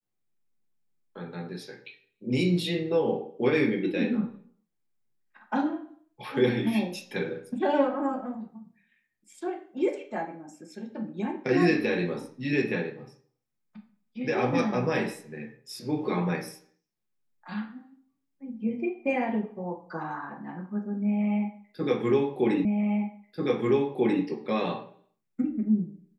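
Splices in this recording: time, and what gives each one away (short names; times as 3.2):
22.65 repeat of the last 1.59 s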